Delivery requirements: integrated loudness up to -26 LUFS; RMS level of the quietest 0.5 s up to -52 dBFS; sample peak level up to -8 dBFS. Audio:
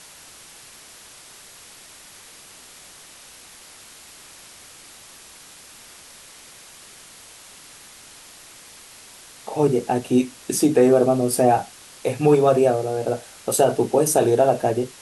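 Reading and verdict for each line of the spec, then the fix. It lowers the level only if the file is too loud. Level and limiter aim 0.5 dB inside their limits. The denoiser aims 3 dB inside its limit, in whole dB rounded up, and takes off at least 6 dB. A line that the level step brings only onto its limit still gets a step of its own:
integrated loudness -19.5 LUFS: fail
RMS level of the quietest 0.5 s -45 dBFS: fail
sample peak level -5.5 dBFS: fail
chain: noise reduction 6 dB, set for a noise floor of -45 dBFS; trim -7 dB

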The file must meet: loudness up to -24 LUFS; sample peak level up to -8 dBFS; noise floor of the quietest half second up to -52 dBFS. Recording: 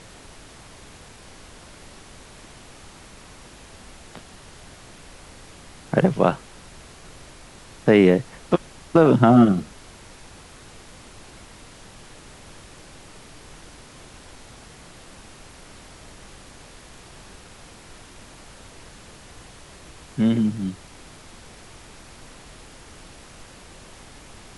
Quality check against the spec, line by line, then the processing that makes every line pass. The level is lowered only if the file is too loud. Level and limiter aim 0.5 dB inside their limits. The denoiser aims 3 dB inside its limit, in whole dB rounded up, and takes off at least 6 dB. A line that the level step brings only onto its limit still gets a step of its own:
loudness -19.5 LUFS: fail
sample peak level -3.5 dBFS: fail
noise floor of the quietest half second -45 dBFS: fail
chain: noise reduction 6 dB, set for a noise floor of -45 dBFS; trim -5 dB

